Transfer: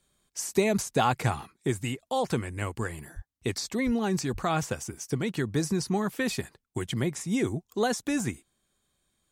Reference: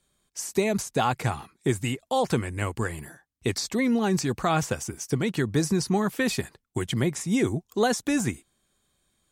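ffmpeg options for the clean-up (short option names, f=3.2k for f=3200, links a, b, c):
-filter_complex "[0:a]asplit=3[a][b][c];[a]afade=t=out:st=3.15:d=0.02[d];[b]highpass=f=140:w=0.5412,highpass=f=140:w=1.3066,afade=t=in:st=3.15:d=0.02,afade=t=out:st=3.27:d=0.02[e];[c]afade=t=in:st=3.27:d=0.02[f];[d][e][f]amix=inputs=3:normalize=0,asplit=3[g][h][i];[g]afade=t=out:st=3.85:d=0.02[j];[h]highpass=f=140:w=0.5412,highpass=f=140:w=1.3066,afade=t=in:st=3.85:d=0.02,afade=t=out:st=3.97:d=0.02[k];[i]afade=t=in:st=3.97:d=0.02[l];[j][k][l]amix=inputs=3:normalize=0,asplit=3[m][n][o];[m]afade=t=out:st=4.32:d=0.02[p];[n]highpass=f=140:w=0.5412,highpass=f=140:w=1.3066,afade=t=in:st=4.32:d=0.02,afade=t=out:st=4.44:d=0.02[q];[o]afade=t=in:st=4.44:d=0.02[r];[p][q][r]amix=inputs=3:normalize=0,asetnsamples=n=441:p=0,asendcmd='1.52 volume volume 3.5dB',volume=0dB"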